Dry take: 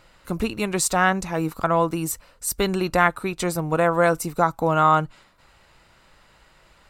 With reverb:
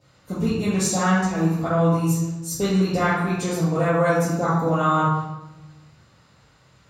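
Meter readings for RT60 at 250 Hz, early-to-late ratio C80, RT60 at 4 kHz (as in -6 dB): 1.4 s, 3.0 dB, 0.75 s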